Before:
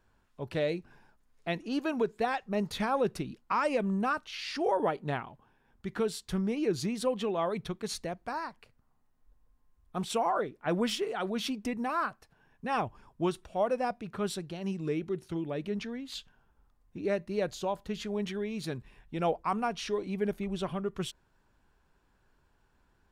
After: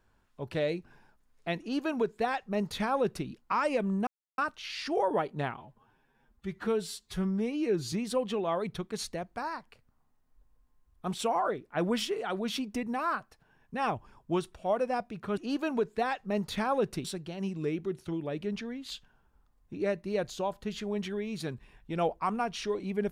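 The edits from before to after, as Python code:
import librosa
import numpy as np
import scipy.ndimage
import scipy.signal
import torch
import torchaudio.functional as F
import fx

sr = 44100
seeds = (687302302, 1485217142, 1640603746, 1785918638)

y = fx.edit(x, sr, fx.duplicate(start_s=1.6, length_s=1.67, to_s=14.28),
    fx.insert_silence(at_s=4.07, length_s=0.31),
    fx.stretch_span(start_s=5.26, length_s=1.57, factor=1.5), tone=tone)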